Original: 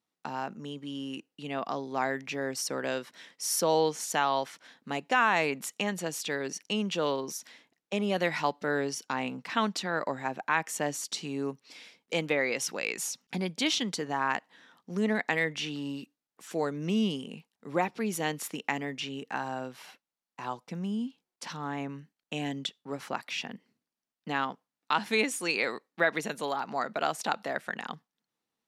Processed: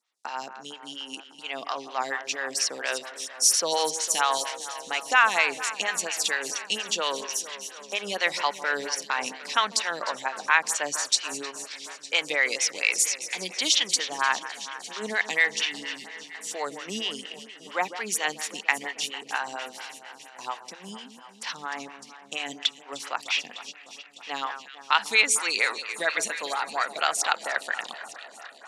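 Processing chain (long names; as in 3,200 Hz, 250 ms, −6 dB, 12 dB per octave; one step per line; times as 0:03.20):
meter weighting curve ITU-R 468
delay that swaps between a low-pass and a high-pass 151 ms, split 1,900 Hz, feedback 85%, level −12 dB
phaser with staggered stages 4.3 Hz
level +4.5 dB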